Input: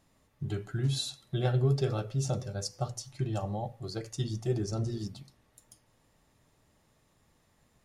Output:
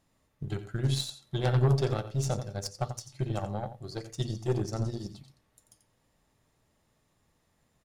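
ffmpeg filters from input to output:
-af "aecho=1:1:88:0.335,aeval=exprs='0.168*(cos(1*acos(clip(val(0)/0.168,-1,1)))-cos(1*PI/2))+0.075*(cos(2*acos(clip(val(0)/0.168,-1,1)))-cos(2*PI/2))+0.0376*(cos(4*acos(clip(val(0)/0.168,-1,1)))-cos(4*PI/2))+0.0211*(cos(5*acos(clip(val(0)/0.168,-1,1)))-cos(5*PI/2))+0.0237*(cos(7*acos(clip(val(0)/0.168,-1,1)))-cos(7*PI/2))':c=same"

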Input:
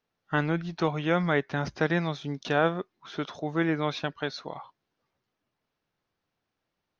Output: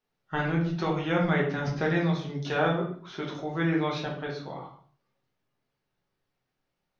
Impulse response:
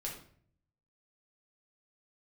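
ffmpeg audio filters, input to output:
-filter_complex "[0:a]asettb=1/sr,asplit=3[a][b][c];[a]atrim=end=4.024[d];[b]atrim=start=4.02:end=4.44,asetpts=PTS-STARTPTS,afade=t=in:d=0.004:c=qsin,afade=t=out:st=0.416:d=0.004:c=qsin,highshelf=f=2.4k:g=-8.5[e];[c]atrim=start=4.436[f];[d][e]acrossfade=d=0.004:c1=hsin:c2=qsin[g];[g][f]acrossfade=d=0.004:c1=qsin:c2=hsin[h];[1:a]atrim=start_sample=2205,afade=t=out:st=0.44:d=0.01,atrim=end_sample=19845[i];[h][i]afir=irnorm=-1:irlink=0"

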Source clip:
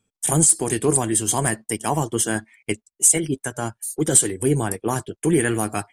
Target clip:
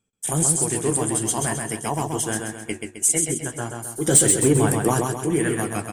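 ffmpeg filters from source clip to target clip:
-filter_complex "[0:a]asettb=1/sr,asplit=3[a][b][c];[a]atrim=end=4.054[d];[b]atrim=start=4.05:end=5.07,asetpts=PTS-STARTPTS,afade=t=in:d=0.004:c=qsin,afade=t=out:st=1.016:d=0.004:c=qsin,acontrast=75[e];[c]atrim=start=5.066[f];[d][e]acrossfade=d=0.004:c1=hsin:c2=qsin[g];[g][f]acrossfade=d=0.004:c1=qsin:c2=hsin,flanger=delay=5.7:depth=9.7:regen=-60:speed=1.6:shape=sinusoidal,aecho=1:1:131|262|393|524|655|786:0.631|0.29|0.134|0.0614|0.0283|0.013"

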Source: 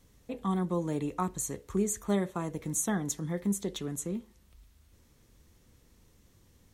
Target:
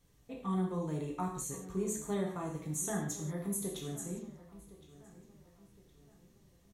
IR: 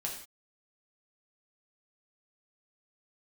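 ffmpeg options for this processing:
-filter_complex "[0:a]asettb=1/sr,asplit=3[a][b][c];[a]atrim=end=3.254[d];[b]atrim=start=3.25:end=3.89,asetpts=PTS-STARTPTS,afade=t=in:d=0.004:c=qsin,afade=t=out:st=0.636:d=0.004:c=qsin,equalizer=f=11k:t=o:w=0.25:g=13.5[e];[c]atrim=start=3.886[f];[d][e]acrossfade=d=0.004:c1=hsin:c2=qsin[g];[g][f]acrossfade=d=0.004:c1=qsin:c2=hsin,asplit=2[h][i];[i]adelay=1064,lowpass=f=3.7k:p=1,volume=-17dB,asplit=2[j][k];[k]adelay=1064,lowpass=f=3.7k:p=1,volume=0.43,asplit=2[l][m];[m]adelay=1064,lowpass=f=3.7k:p=1,volume=0.43,asplit=2[n][o];[o]adelay=1064,lowpass=f=3.7k:p=1,volume=0.43[p];[h][j][l][n][p]amix=inputs=5:normalize=0[q];[1:a]atrim=start_sample=2205[r];[q][r]afir=irnorm=-1:irlink=0,volume=-6.5dB"

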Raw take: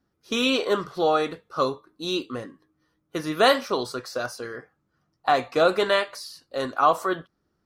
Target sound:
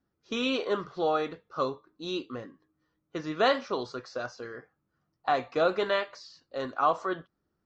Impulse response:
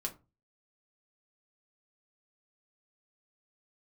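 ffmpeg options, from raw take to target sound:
-af "highshelf=f=6k:g=-10.5,aresample=16000,aresample=44100,volume=-5.5dB"

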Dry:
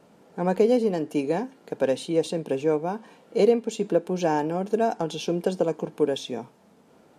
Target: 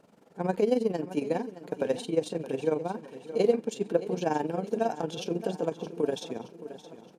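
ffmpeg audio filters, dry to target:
-af "tremolo=f=22:d=0.75,aecho=1:1:620|1240|1860|2480|3100:0.2|0.104|0.054|0.0281|0.0146,volume=-1.5dB"

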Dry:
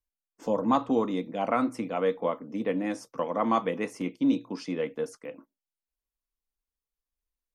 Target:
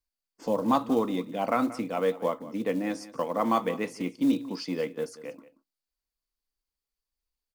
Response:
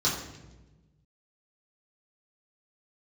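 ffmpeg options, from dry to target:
-filter_complex "[0:a]equalizer=f=4.6k:t=o:w=0.27:g=10,acrusher=bits=7:mode=log:mix=0:aa=0.000001,asplit=2[a][b];[b]aecho=0:1:181:0.141[c];[a][c]amix=inputs=2:normalize=0"

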